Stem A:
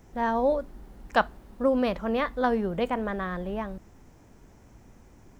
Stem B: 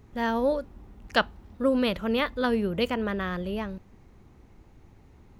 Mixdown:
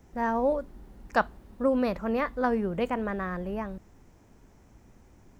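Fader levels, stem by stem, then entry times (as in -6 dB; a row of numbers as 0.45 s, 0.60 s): -3.5 dB, -12.0 dB; 0.00 s, 0.00 s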